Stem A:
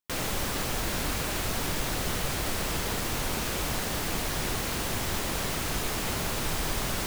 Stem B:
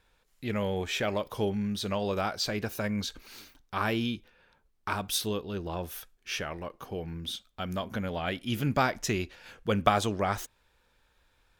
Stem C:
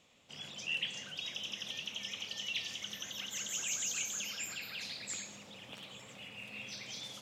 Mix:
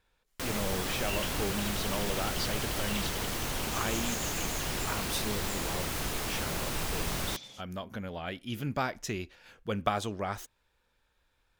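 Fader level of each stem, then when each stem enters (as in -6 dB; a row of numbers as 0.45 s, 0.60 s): -3.5 dB, -5.5 dB, -3.5 dB; 0.30 s, 0.00 s, 0.40 s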